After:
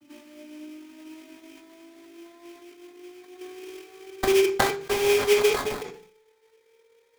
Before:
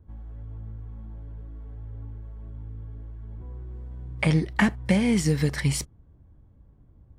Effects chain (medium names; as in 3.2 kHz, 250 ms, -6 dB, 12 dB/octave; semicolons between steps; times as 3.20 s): vocoder on a note that slides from D4, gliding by +8 st; level-controlled noise filter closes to 1.9 kHz, open at -18 dBFS; in parallel at 0 dB: compression, threshold -35 dBFS, peak gain reduction 18 dB; on the sum: sample-rate reducer 2.8 kHz, jitter 20%; on a send at -5 dB: reverberation RT60 0.45 s, pre-delay 3 ms; on the sum: decay stretcher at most 92 dB/s